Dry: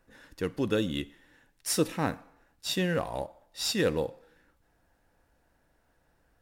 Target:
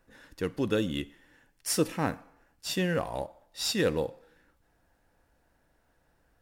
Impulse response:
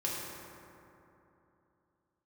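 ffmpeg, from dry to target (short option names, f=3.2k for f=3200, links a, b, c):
-filter_complex "[0:a]asettb=1/sr,asplit=3[a][b][c];[a]atrim=end=0.784[d];[b]atrim=start=0.78:end=3.14,asetpts=PTS-STARTPTS,afade=t=in:d=0.004:c=qsin,afade=t=out:st=2.356:d=0.004:c=qsin,bandreject=f=3.8k:w=12[e];[c]atrim=start=3.136[f];[d][e]acrossfade=d=0.004:c1=hsin:c2=qsin[g];[g][f]acrossfade=d=0.004:c1=qsin:c2=hsin"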